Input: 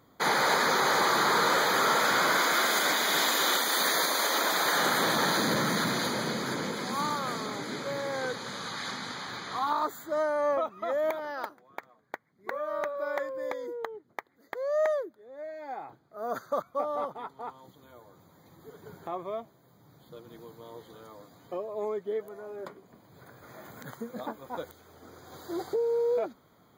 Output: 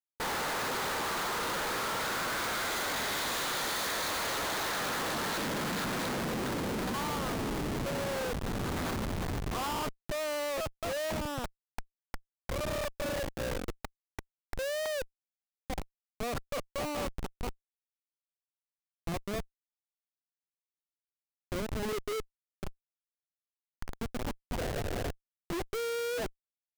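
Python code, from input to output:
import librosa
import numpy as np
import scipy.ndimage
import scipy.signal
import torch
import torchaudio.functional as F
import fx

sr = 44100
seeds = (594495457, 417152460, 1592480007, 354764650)

y = fx.spec_paint(x, sr, seeds[0], shape='noise', start_s=24.61, length_s=0.5, low_hz=370.0, high_hz=760.0, level_db=-35.0)
y = fx.schmitt(y, sr, flips_db=-32.5)
y = y * 10.0 ** (-2.5 / 20.0)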